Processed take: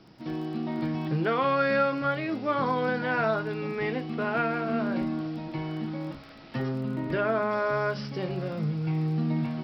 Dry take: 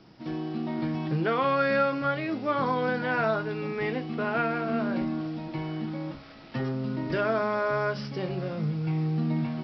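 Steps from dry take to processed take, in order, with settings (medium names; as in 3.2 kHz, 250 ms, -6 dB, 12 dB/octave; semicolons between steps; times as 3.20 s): 6.81–7.51 s: low-pass 3.4 kHz 12 dB/octave; crackle 20 per s -43 dBFS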